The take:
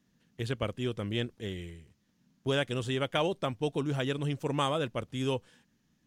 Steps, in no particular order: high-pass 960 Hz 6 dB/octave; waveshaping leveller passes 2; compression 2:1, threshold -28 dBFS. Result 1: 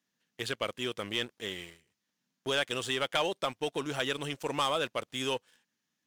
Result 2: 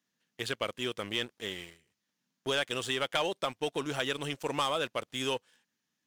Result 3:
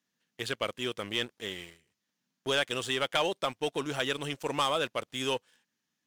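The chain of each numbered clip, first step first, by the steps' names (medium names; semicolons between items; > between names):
compression > high-pass > waveshaping leveller; high-pass > waveshaping leveller > compression; high-pass > compression > waveshaping leveller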